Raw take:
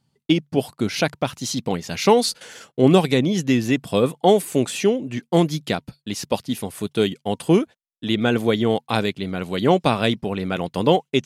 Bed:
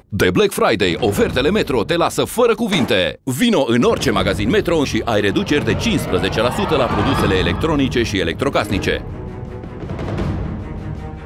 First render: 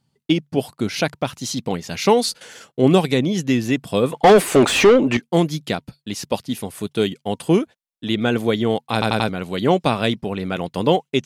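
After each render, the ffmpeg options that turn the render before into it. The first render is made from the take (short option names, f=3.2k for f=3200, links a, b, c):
-filter_complex "[0:a]asettb=1/sr,asplit=3[a][b][c];[a]atrim=end=4.124[d];[b]atrim=start=4.12:end=5.17,asetpts=PTS-STARTPTS,afade=t=in:d=0.004:c=qsin,afade=t=out:st=1.046:d=0.004:c=qsin,asplit=2[e][f];[f]highpass=f=720:p=1,volume=28dB,asoftclip=type=tanh:threshold=-2.5dB[g];[e][g]amix=inputs=2:normalize=0,lowpass=f=1.7k:p=1,volume=-6dB[h];[c]atrim=start=5.166[i];[d][h]acrossfade=d=0.004:c1=hsin:c2=qsin[j];[j][i]acrossfade=d=0.004:c1=qsin:c2=hsin,asplit=5[k][l][m][n][o];[k]atrim=end=9.022[p];[l]atrim=start=8.928:end=9.022[q];[m]atrim=start=8.928:end=9.022[r];[n]atrim=start=8.928:end=9.022[s];[o]atrim=start=9.288[t];[p][q]acrossfade=d=0.004:c1=hsin:c2=hsin[u];[u][r]acrossfade=d=0.004:c1=hsin:c2=hsin[v];[v][s]acrossfade=d=0.004:c1=hsin:c2=hsin[w];[w][t]acrossfade=d=0.004:c1=hsin:c2=hsin"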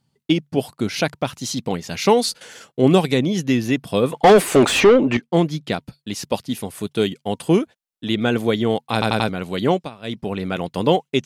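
-filter_complex "[0:a]asettb=1/sr,asplit=3[a][b][c];[a]atrim=end=3.384[d];[b]atrim=start=3.38:end=4.08,asetpts=PTS-STARTPTS,afade=t=in:d=0.004:c=qsin,afade=t=out:st=0.696:d=0.004:c=qsin,bandreject=f=7.6k:w=6.3[e];[c]atrim=start=4.076[f];[d][e]acrossfade=d=0.004:c1=hsin:c2=qsin[g];[g][f]acrossfade=d=0.004:c1=qsin:c2=hsin,asettb=1/sr,asplit=3[h][i][j];[h]atrim=end=4.804[k];[i]atrim=start=4.8:end=5.72,asetpts=PTS-STARTPTS,afade=t=in:d=0.004:c=qsin,afade=t=out:st=0.916:d=0.004:c=qsin,highshelf=f=6.5k:g=-11.5[l];[j]atrim=start=5.716[m];[k][l]acrossfade=d=0.004:c1=hsin:c2=qsin[n];[n][m]acrossfade=d=0.004:c1=qsin:c2=hsin,asplit=3[o][p][q];[o]atrim=end=9.9,asetpts=PTS-STARTPTS,afade=t=out:st=9.59:d=0.31:c=qsin:silence=0.105925[r];[p]atrim=start=9.9:end=10.02,asetpts=PTS-STARTPTS,volume=-19.5dB[s];[q]atrim=start=10.02,asetpts=PTS-STARTPTS,afade=t=in:d=0.31:c=qsin:silence=0.105925[t];[r][s][t]concat=n=3:v=0:a=1"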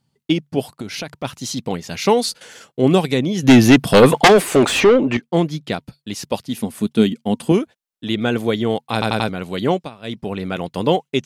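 -filter_complex "[0:a]asplit=3[a][b][c];[a]afade=t=out:st=0.71:d=0.02[d];[b]acompressor=threshold=-24dB:ratio=6:attack=3.2:release=140:knee=1:detection=peak,afade=t=in:st=0.71:d=0.02,afade=t=out:st=1.23:d=0.02[e];[c]afade=t=in:st=1.23:d=0.02[f];[d][e][f]amix=inputs=3:normalize=0,asplit=3[g][h][i];[g]afade=t=out:st=3.42:d=0.02[j];[h]aeval=exprs='0.668*sin(PI/2*2.82*val(0)/0.668)':c=same,afade=t=in:st=3.42:d=0.02,afade=t=out:st=4.27:d=0.02[k];[i]afade=t=in:st=4.27:d=0.02[l];[j][k][l]amix=inputs=3:normalize=0,asettb=1/sr,asplit=3[m][n][o];[m]atrim=end=6.574[p];[n]atrim=start=6.57:end=7.52,asetpts=PTS-STARTPTS,afade=t=in:d=0.004:c=qsin,afade=t=out:st=0.946:d=0.004:c=qsin,equalizer=f=230:t=o:w=0.43:g=14[q];[o]atrim=start=7.516[r];[p][q]acrossfade=d=0.004:c1=hsin:c2=qsin[s];[s][r]acrossfade=d=0.004:c1=qsin:c2=hsin"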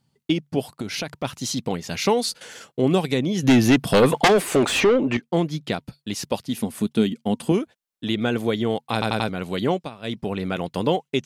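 -af "acompressor=threshold=-24dB:ratio=1.5"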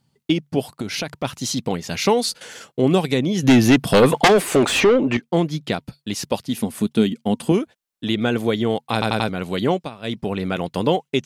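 -af "volume=2.5dB"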